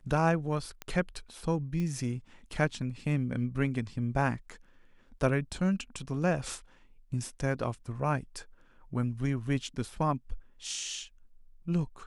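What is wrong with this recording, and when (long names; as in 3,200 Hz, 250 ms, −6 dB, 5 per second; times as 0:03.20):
0:00.82: click −21 dBFS
0:01.80: click −24 dBFS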